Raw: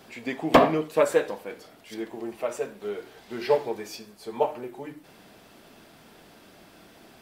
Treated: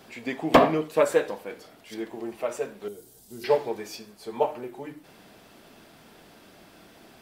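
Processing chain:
0:02.88–0:03.44: drawn EQ curve 120 Hz 0 dB, 2,200 Hz −22 dB, 8,700 Hz +11 dB

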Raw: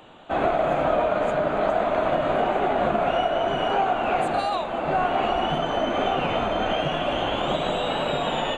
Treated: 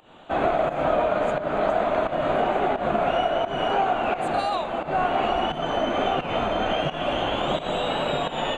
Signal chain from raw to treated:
fake sidechain pumping 87 BPM, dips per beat 1, −13 dB, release 206 ms

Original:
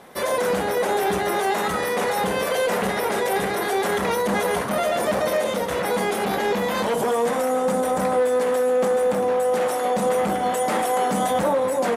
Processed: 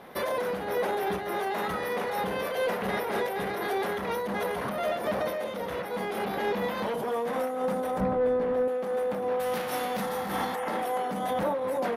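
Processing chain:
0:09.39–0:10.54: spectral envelope flattened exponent 0.6
parametric band 7,700 Hz −15 dB 0.76 octaves
0:10.04–0:10.72: healed spectral selection 660–3,200 Hz after
brickwall limiter −19.5 dBFS, peak gain reduction 9 dB
0:08.00–0:08.68: RIAA equalisation playback
amplitude modulation by smooth noise, depth 65%

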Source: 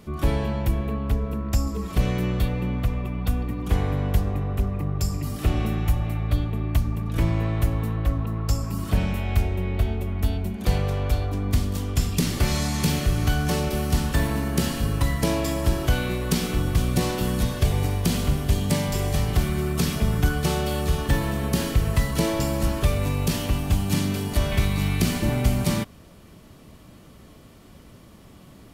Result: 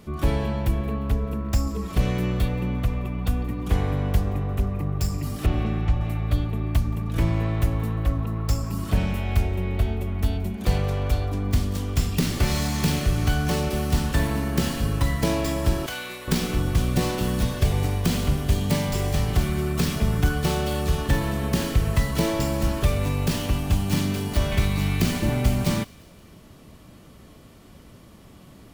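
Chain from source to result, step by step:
stylus tracing distortion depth 0.15 ms
0:05.46–0:06.01: high-frequency loss of the air 140 metres
0:15.86–0:16.28: high-pass filter 1,300 Hz 6 dB per octave
delay with a high-pass on its return 175 ms, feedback 53%, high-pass 1,900 Hz, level −22 dB

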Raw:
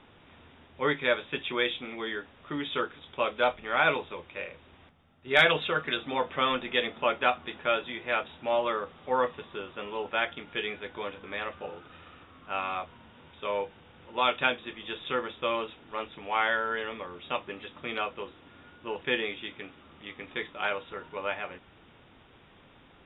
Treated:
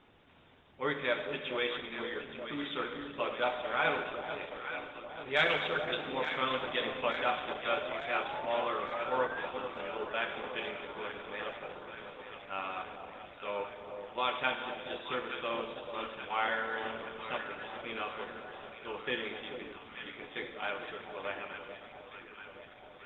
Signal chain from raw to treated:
low-shelf EQ 98 Hz −3 dB
four-comb reverb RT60 1.8 s, combs from 31 ms, DRR 6 dB
sound drawn into the spectrogram rise, 0:07.73–0:09.46, 570–1,700 Hz −35 dBFS
on a send: delay that swaps between a low-pass and a high-pass 438 ms, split 900 Hz, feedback 80%, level −7 dB
on the sum: level −6 dB
Opus 12 kbit/s 48,000 Hz

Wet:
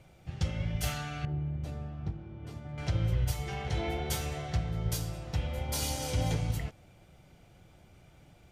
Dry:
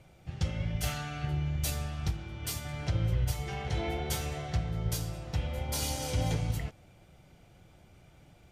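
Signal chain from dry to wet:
0:01.25–0:02.78: resonant band-pass 240 Hz, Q 0.55

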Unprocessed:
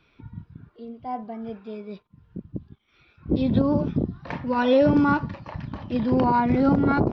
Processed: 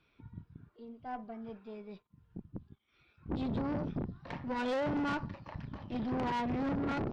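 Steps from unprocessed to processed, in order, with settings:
tube saturation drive 24 dB, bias 0.6
level −6.5 dB

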